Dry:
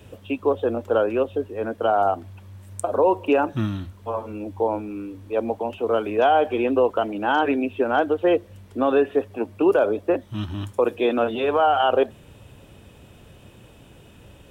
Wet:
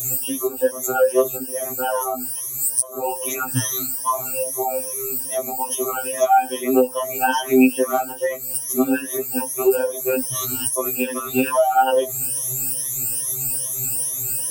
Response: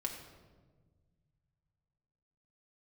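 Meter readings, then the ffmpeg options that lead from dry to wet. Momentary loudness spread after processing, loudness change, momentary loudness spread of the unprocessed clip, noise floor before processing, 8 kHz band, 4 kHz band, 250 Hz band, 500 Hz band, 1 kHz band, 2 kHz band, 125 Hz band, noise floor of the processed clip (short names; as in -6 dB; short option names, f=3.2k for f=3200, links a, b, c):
6 LU, +2.0 dB, 12 LU, -49 dBFS, n/a, +3.0 dB, +2.0 dB, -1.0 dB, +1.5 dB, +1.5 dB, -1.5 dB, -31 dBFS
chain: -filter_complex "[0:a]afftfilt=real='re*pow(10,23/40*sin(2*PI*(1.2*log(max(b,1)*sr/1024/100)/log(2)-(2.4)*(pts-256)/sr)))':imag='im*pow(10,23/40*sin(2*PI*(1.2*log(max(b,1)*sr/1024/100)/log(2)-(2.4)*(pts-256)/sr)))':win_size=1024:overlap=0.75,lowshelf=f=110:g=3,bandreject=f=6.9k:w=25,acrossover=split=2400[a][b];[b]aexciter=amount=12.4:drive=7.3:freq=5.3k[c];[a][c]amix=inputs=2:normalize=0,highshelf=f=4.2k:g=9.5,acompressor=threshold=-18dB:ratio=12,afftfilt=real='re*2.45*eq(mod(b,6),0)':imag='im*2.45*eq(mod(b,6),0)':win_size=2048:overlap=0.75,volume=4dB"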